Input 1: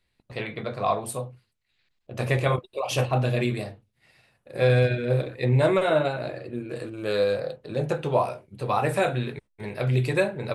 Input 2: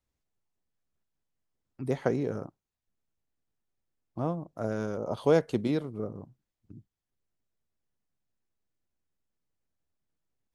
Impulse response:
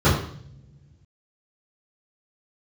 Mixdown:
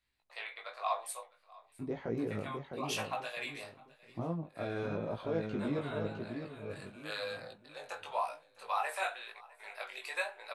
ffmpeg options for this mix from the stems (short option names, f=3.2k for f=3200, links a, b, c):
-filter_complex "[0:a]highpass=f=750:w=0.5412,highpass=f=750:w=1.3066,volume=-3.5dB,asplit=2[a][b];[b]volume=-22.5dB[c];[1:a]lowpass=3.3k,alimiter=limit=-22.5dB:level=0:latency=1:release=55,volume=-0.5dB,asplit=3[d][e][f];[e]volume=-6dB[g];[f]apad=whole_len=465074[h];[a][h]sidechaincompress=threshold=-40dB:ratio=8:attack=8.5:release=438[i];[c][g]amix=inputs=2:normalize=0,aecho=0:1:658|1316|1974|2632:1|0.29|0.0841|0.0244[j];[i][d][j]amix=inputs=3:normalize=0,flanger=delay=17.5:depth=3.7:speed=0.95"